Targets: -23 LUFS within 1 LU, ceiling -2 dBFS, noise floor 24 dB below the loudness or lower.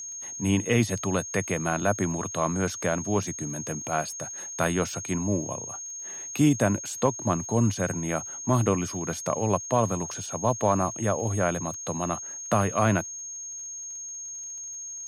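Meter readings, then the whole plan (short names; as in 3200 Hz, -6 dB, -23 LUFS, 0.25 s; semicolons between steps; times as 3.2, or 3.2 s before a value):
ticks 56/s; steady tone 6500 Hz; tone level -35 dBFS; loudness -27.5 LUFS; peak -9.5 dBFS; loudness target -23.0 LUFS
-> de-click; notch 6500 Hz, Q 30; gain +4.5 dB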